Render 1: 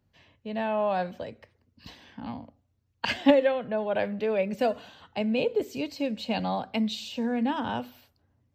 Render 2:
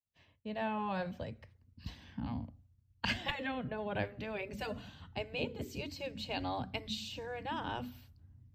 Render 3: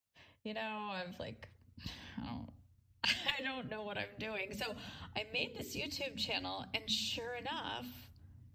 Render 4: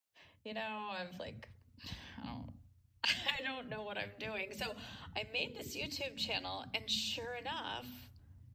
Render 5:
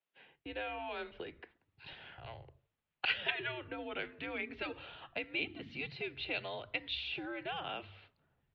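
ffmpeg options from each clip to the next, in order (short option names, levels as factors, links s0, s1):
-af "asubboost=boost=9.5:cutoff=170,agate=range=0.0224:threshold=0.002:ratio=3:detection=peak,afftfilt=real='re*lt(hypot(re,im),0.316)':imag='im*lt(hypot(re,im),0.316)':win_size=1024:overlap=0.75,volume=0.562"
-filter_complex "[0:a]lowshelf=f=180:g=-7,acrossover=split=2400[s0][s1];[s0]acompressor=threshold=0.00447:ratio=6[s2];[s2][s1]amix=inputs=2:normalize=0,volume=2"
-filter_complex "[0:a]acrossover=split=240[s0][s1];[s0]adelay=60[s2];[s2][s1]amix=inputs=2:normalize=0"
-af "highpass=f=290:t=q:w=0.5412,highpass=f=290:t=q:w=1.307,lowpass=f=3600:t=q:w=0.5176,lowpass=f=3600:t=q:w=0.7071,lowpass=f=3600:t=q:w=1.932,afreqshift=-150,volume=1.19"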